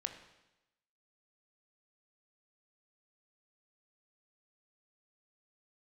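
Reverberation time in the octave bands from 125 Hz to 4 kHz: 0.95, 0.95, 1.0, 0.95, 0.95, 0.95 s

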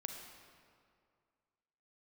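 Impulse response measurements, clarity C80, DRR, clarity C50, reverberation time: 5.5 dB, 3.0 dB, 4.0 dB, 2.2 s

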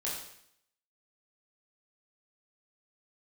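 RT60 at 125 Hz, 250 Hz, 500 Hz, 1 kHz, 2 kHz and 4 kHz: 0.70, 0.75, 0.70, 0.70, 0.70, 0.70 s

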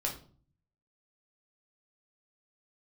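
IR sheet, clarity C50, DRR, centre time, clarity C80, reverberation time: 9.0 dB, -1.0 dB, 20 ms, 14.0 dB, 0.45 s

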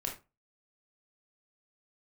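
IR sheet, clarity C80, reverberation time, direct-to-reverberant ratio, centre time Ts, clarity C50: 15.0 dB, 0.25 s, -0.5 dB, 21 ms, 8.5 dB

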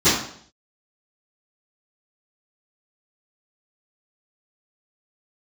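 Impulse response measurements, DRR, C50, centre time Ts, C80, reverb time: -22.5 dB, 3.0 dB, 50 ms, 7.0 dB, 0.60 s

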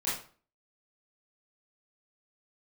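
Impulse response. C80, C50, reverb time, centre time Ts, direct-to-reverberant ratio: 9.0 dB, 3.0 dB, 0.45 s, 46 ms, -10.0 dB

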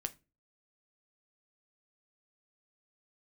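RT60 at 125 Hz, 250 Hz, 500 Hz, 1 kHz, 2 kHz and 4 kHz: 0.45, 0.40, 0.35, 0.25, 0.25, 0.20 s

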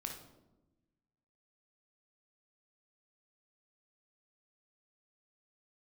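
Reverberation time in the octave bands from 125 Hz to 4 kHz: 1.6, 1.5, 1.2, 0.90, 0.65, 0.60 s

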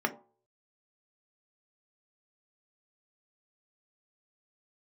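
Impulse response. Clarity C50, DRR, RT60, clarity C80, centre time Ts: 15.0 dB, 4.0 dB, 0.45 s, 19.5 dB, 7 ms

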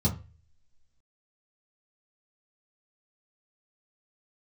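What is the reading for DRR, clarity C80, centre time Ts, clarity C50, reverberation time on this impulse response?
-7.0 dB, 18.0 dB, 16 ms, 13.0 dB, 0.30 s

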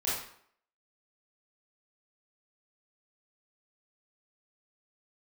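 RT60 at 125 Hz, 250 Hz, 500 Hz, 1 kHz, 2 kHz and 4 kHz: 0.50, 0.60, 0.60, 0.65, 0.55, 0.50 s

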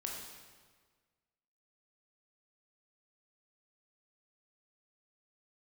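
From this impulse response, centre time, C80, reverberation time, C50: 66 ms, 4.0 dB, 1.6 s, 2.0 dB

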